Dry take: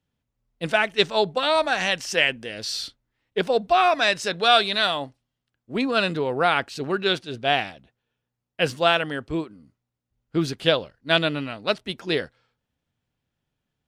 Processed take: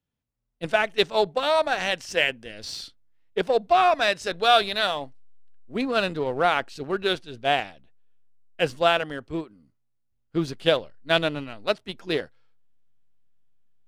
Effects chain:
dynamic equaliser 610 Hz, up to +3 dB, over −31 dBFS, Q 0.88
in parallel at −4 dB: slack as between gear wheels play −18 dBFS
on the sum: level −6.5 dB

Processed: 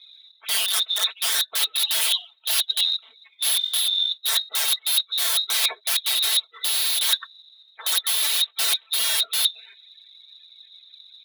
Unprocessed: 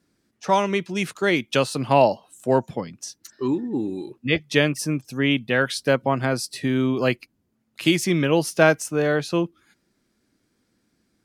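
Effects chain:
spectral magnitudes quantised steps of 30 dB
spectral tilt −3 dB per octave
voice inversion scrambler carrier 3,900 Hz
in parallel at +0.5 dB: brickwall limiter −8.5 dBFS, peak gain reduction 8.5 dB
on the sum: wrap-around overflow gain 8 dB
reversed playback
downward compressor 16 to 1, threshold −26 dBFS, peak gain reduction 15.5 dB
reversed playback
phase shifter 2 Hz, delay 3 ms, feedback 30%
high-pass filter 530 Hz 24 dB per octave
comb filter 4.5 ms, depth 90%
level +3.5 dB

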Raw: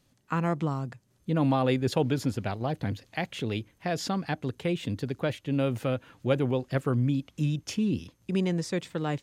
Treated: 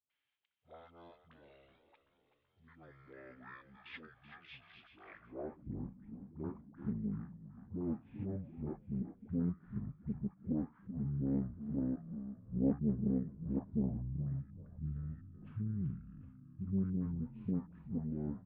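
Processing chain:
low-pass filter 4,200 Hz 12 dB per octave
wrong playback speed 15 ips tape played at 7.5 ips
all-pass dispersion highs, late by 102 ms, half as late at 370 Hz
echo with shifted repeats 380 ms, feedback 62%, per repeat −53 Hz, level −11 dB
band-pass filter sweep 3,200 Hz → 210 Hz, 0:05.03–0:05.71
highs frequency-modulated by the lows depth 0.56 ms
level −2.5 dB

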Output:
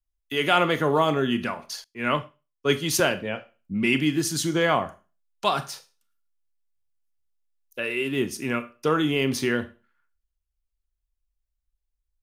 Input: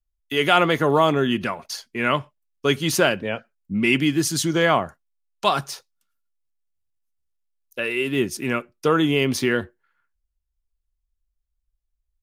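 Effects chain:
four-comb reverb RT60 0.33 s, combs from 26 ms, DRR 11.5 dB
0:01.84–0:03.00: multiband upward and downward expander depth 70%
level −3.5 dB

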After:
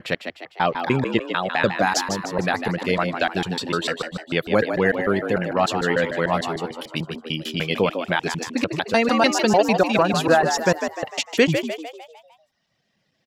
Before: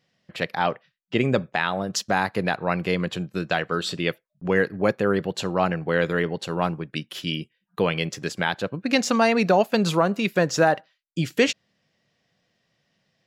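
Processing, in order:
slices reordered back to front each 149 ms, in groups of 3
reverb reduction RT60 1.2 s
echo with shifted repeats 151 ms, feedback 48%, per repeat +77 Hz, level −7.5 dB
level +2.5 dB

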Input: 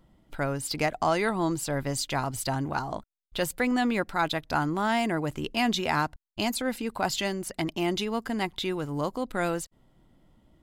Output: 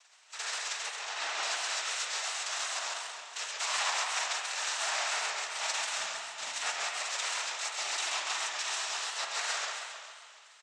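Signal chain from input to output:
spectral envelope flattened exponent 0.1
high-pass filter 770 Hz 24 dB per octave
in parallel at −1 dB: downward compressor, threshold −36 dBFS, peak gain reduction 15 dB
on the sum: brickwall limiter −15 dBFS, peak gain reduction 11 dB
0:05.94–0:06.54: hard clipping −22 dBFS, distortion −29 dB
cochlear-implant simulation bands 12
0:00.83–0:01.43: high-frequency loss of the air 80 metres
on a send: repeating echo 291 ms, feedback 36%, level −13 dB
on the sum: spring reverb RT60 1.7 s, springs 44 ms, chirp 60 ms, DRR 3 dB
feedback echo with a swinging delay time 135 ms, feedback 48%, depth 143 cents, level −4 dB
level −4 dB

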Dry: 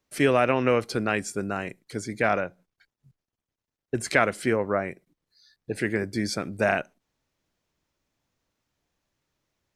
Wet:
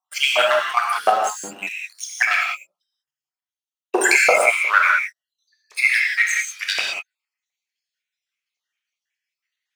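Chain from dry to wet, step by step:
time-frequency cells dropped at random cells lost 68%
dynamic equaliser 1,500 Hz, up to +6 dB, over −46 dBFS, Q 2
leveller curve on the samples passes 3
high-pass filter sweep 120 Hz → 2,100 Hz, 0:03.10–0:05.12
square-wave tremolo 2.6 Hz, depth 65%, duty 85%
auto-filter high-pass saw up 2.8 Hz 620–6,100 Hz
reverb whose tail is shaped and stops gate 220 ms flat, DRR −1.5 dB
0:03.94–0:04.46: envelope flattener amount 50%

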